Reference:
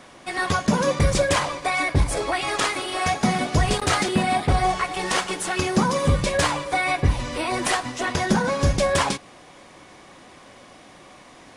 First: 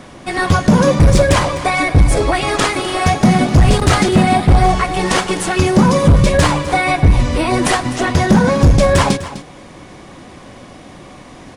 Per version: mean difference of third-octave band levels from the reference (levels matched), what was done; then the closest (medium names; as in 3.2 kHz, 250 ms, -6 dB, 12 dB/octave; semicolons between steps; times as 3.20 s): 3.5 dB: bass shelf 340 Hz +11.5 dB; in parallel at -0.5 dB: peak limiter -7 dBFS, peak gain reduction 8 dB; on the sum: hard clipper -4.5 dBFS, distortion -12 dB; delay 253 ms -14.5 dB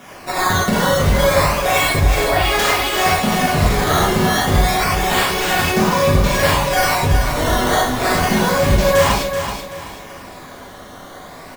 7.0 dB: decimation with a swept rate 10×, swing 160% 0.3 Hz; compression 2.5:1, threshold -24 dBFS, peak gain reduction 7.5 dB; on a send: feedback delay 380 ms, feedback 32%, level -8 dB; on the sum: gated-style reverb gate 130 ms flat, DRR -6.5 dB; trim +3 dB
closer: first